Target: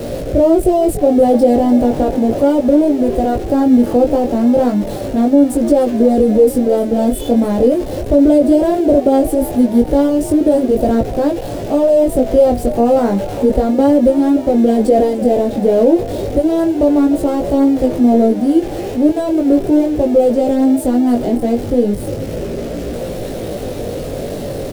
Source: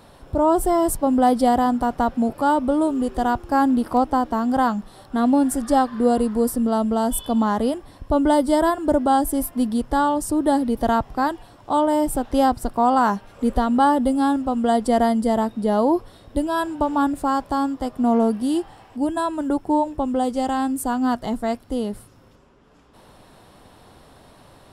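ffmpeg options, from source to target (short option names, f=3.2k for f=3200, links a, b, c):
-filter_complex "[0:a]aeval=exprs='val(0)+0.5*0.075*sgn(val(0))':c=same,flanger=delay=17:depth=4.3:speed=0.35,acrossover=split=180|1100[a][b][c];[a]acrusher=samples=23:mix=1:aa=0.000001[d];[d][b][c]amix=inputs=3:normalize=0,lowshelf=f=720:t=q:w=3:g=10,asplit=2[e][f];[f]asplit=5[g][h][i][j][k];[g]adelay=297,afreqshift=62,volume=-16.5dB[l];[h]adelay=594,afreqshift=124,volume=-21.7dB[m];[i]adelay=891,afreqshift=186,volume=-26.9dB[n];[j]adelay=1188,afreqshift=248,volume=-32.1dB[o];[k]adelay=1485,afreqshift=310,volume=-37.3dB[p];[l][m][n][o][p]amix=inputs=5:normalize=0[q];[e][q]amix=inputs=2:normalize=0,alimiter=level_in=-1dB:limit=-1dB:release=50:level=0:latency=1,volume=-1dB"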